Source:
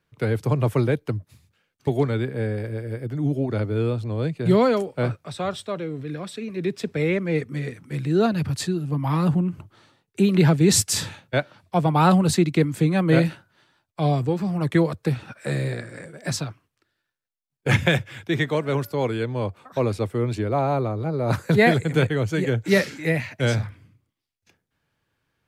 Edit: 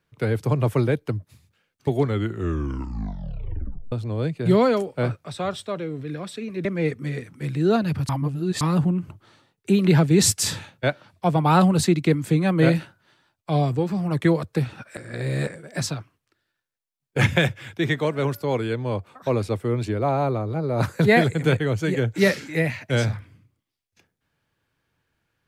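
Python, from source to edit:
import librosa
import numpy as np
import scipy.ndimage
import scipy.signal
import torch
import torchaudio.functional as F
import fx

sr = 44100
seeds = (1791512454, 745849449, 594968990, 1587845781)

y = fx.edit(x, sr, fx.tape_stop(start_s=2.02, length_s=1.9),
    fx.cut(start_s=6.65, length_s=0.5),
    fx.reverse_span(start_s=8.59, length_s=0.52),
    fx.reverse_span(start_s=15.47, length_s=0.5), tone=tone)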